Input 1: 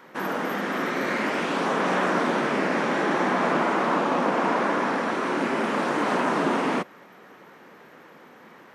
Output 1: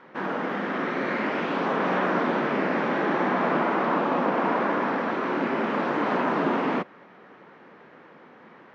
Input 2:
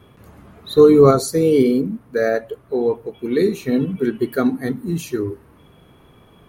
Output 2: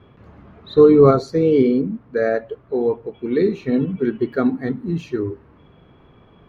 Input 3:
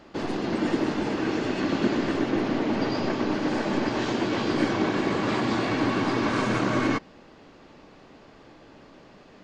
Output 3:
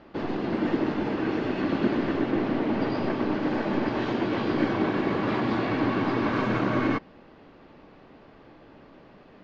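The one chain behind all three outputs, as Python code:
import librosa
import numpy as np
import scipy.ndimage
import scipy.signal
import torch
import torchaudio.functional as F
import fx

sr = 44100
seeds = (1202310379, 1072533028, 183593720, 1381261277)

y = fx.air_absorb(x, sr, metres=220.0)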